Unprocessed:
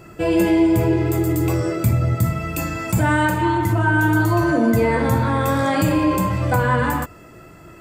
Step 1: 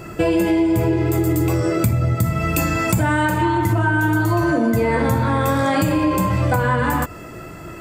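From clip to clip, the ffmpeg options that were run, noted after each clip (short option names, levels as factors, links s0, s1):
-af "acompressor=threshold=0.0708:ratio=6,volume=2.51"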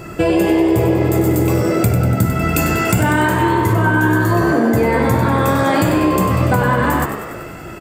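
-filter_complex "[0:a]asplit=9[s0][s1][s2][s3][s4][s5][s6][s7][s8];[s1]adelay=96,afreqshift=67,volume=0.355[s9];[s2]adelay=192,afreqshift=134,volume=0.226[s10];[s3]adelay=288,afreqshift=201,volume=0.145[s11];[s4]adelay=384,afreqshift=268,volume=0.0933[s12];[s5]adelay=480,afreqshift=335,volume=0.0596[s13];[s6]adelay=576,afreqshift=402,volume=0.038[s14];[s7]adelay=672,afreqshift=469,volume=0.0243[s15];[s8]adelay=768,afreqshift=536,volume=0.0157[s16];[s0][s9][s10][s11][s12][s13][s14][s15][s16]amix=inputs=9:normalize=0,volume=1.33"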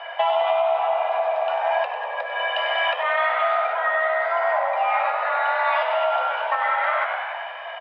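-af "acompressor=threshold=0.158:ratio=6,highpass=f=290:t=q:w=0.5412,highpass=f=290:t=q:w=1.307,lowpass=f=3200:t=q:w=0.5176,lowpass=f=3200:t=q:w=0.7071,lowpass=f=3200:t=q:w=1.932,afreqshift=330"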